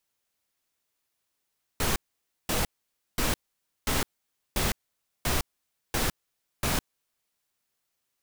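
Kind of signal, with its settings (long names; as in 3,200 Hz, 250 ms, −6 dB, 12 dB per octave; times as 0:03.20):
noise bursts pink, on 0.16 s, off 0.53 s, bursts 8, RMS −26 dBFS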